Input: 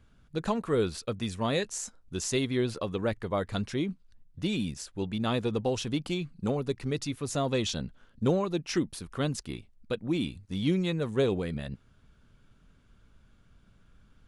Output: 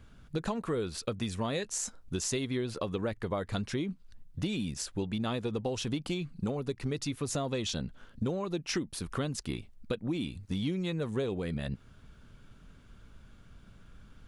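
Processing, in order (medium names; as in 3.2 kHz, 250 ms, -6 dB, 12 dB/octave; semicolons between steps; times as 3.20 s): compression 6:1, threshold -36 dBFS, peak gain reduction 15 dB; trim +6 dB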